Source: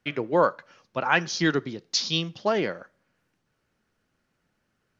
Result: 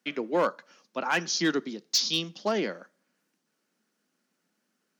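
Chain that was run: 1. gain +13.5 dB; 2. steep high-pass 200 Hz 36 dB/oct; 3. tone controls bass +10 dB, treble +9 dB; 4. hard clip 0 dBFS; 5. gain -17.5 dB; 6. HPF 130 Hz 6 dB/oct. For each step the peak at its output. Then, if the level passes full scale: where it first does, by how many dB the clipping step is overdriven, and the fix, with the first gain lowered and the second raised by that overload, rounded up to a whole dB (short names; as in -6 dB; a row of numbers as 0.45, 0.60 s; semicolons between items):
+7.0, +6.0, +8.0, 0.0, -17.5, -15.5 dBFS; step 1, 8.0 dB; step 1 +5.5 dB, step 5 -9.5 dB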